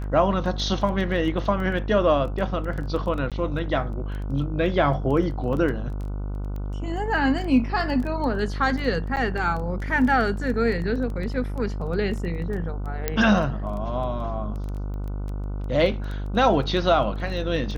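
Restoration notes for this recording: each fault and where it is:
buzz 50 Hz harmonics 30 -29 dBFS
crackle 10/s -30 dBFS
3.3–3.32 gap 17 ms
5.53 gap 2.3 ms
9.16–9.17 gap 8.9 ms
13.08 pop -8 dBFS

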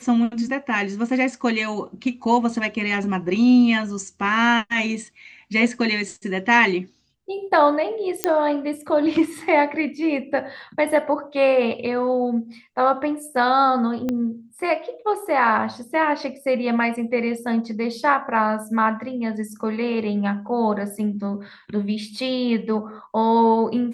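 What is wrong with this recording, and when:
8.24 pop -3 dBFS
14.09 pop -13 dBFS

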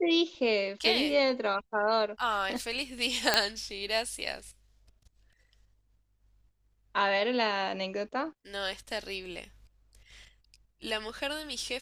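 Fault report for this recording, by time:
3.34 pop -6 dBFS

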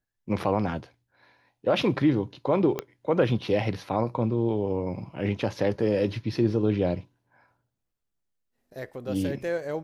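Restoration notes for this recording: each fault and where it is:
2.79 pop -14 dBFS

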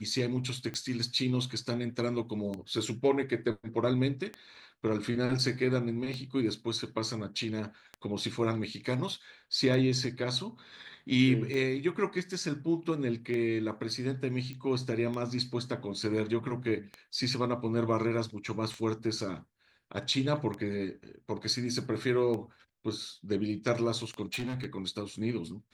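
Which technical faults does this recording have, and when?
tick 33 1/3 rpm -24 dBFS
14.53 pop -28 dBFS
24.25–24.66 clipped -31 dBFS

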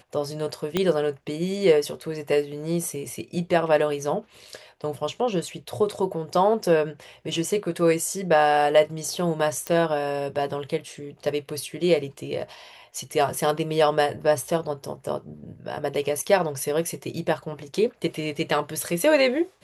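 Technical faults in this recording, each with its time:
0.77 pop -9 dBFS
9.67 pop -12 dBFS

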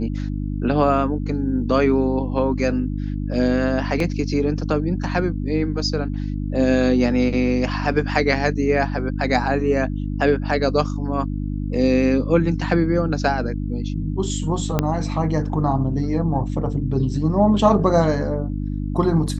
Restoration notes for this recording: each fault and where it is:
hum 50 Hz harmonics 6 -25 dBFS
4 gap 2.4 ms
14.79 pop -5 dBFS

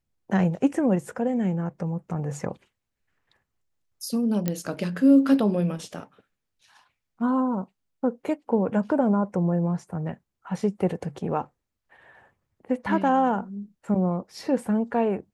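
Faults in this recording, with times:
4.48 pop -11 dBFS

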